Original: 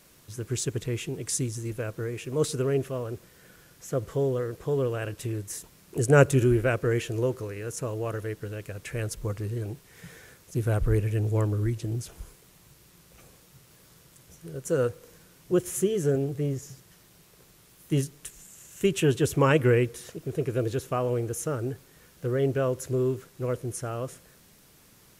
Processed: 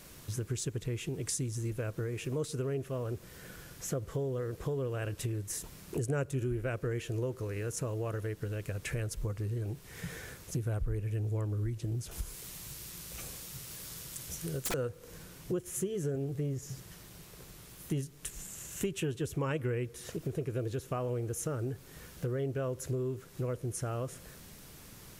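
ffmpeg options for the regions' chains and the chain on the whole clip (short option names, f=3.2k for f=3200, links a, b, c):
-filter_complex "[0:a]asettb=1/sr,asplit=3[a][b][c];[a]atrim=end=12.114[d];[b]atrim=start=12.11:end=14.74,asetpts=PTS-STARTPTS,afade=t=in:d=0.004:c=qsin,afade=t=out:st=2.626:d=0.004:c=qsin,highshelf=f=2.4k:g=10,aeval=exprs='(mod(13.3*val(0)+1,2)-1)/13.3':c=same[e];[c]atrim=start=14.736[f];[d][e]acrossfade=d=0.004:c1=hsin:c2=qsin[g];[g][f]acrossfade=d=0.004:c1=qsin:c2=hsin,lowshelf=f=110:g=7,acompressor=threshold=-38dB:ratio=4,volume=4dB"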